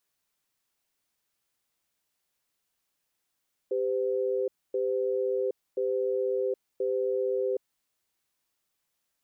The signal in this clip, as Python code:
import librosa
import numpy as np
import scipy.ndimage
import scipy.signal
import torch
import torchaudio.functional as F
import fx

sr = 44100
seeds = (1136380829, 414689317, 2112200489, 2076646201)

y = fx.cadence(sr, length_s=4.0, low_hz=394.0, high_hz=510.0, on_s=0.77, off_s=0.26, level_db=-28.0)